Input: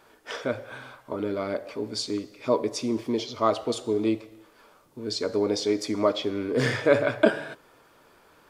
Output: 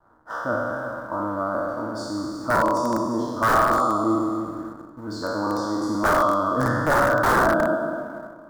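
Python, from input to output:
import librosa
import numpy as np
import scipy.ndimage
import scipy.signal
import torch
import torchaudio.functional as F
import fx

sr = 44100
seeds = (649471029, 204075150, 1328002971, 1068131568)

p1 = fx.spec_trails(x, sr, decay_s=2.22)
p2 = fx.peak_eq(p1, sr, hz=340.0, db=11.5, octaves=0.42)
p3 = fx.fixed_phaser(p2, sr, hz=960.0, stages=4)
p4 = p3 + fx.echo_single(p3, sr, ms=357, db=-12.0, dry=0)
p5 = (np.mod(10.0 ** (15.5 / 20.0) * p4 + 1.0, 2.0) - 1.0) / 10.0 ** (15.5 / 20.0)
p6 = fx.quant_dither(p5, sr, seeds[0], bits=6, dither='none')
p7 = p5 + (p6 * librosa.db_to_amplitude(-11.0))
p8 = fx.backlash(p7, sr, play_db=-49.0)
y = fx.high_shelf_res(p8, sr, hz=1900.0, db=-11.0, q=3.0)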